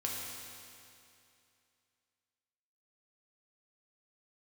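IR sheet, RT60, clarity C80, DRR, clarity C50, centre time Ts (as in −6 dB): 2.6 s, 1.0 dB, −3.5 dB, −0.5 dB, 130 ms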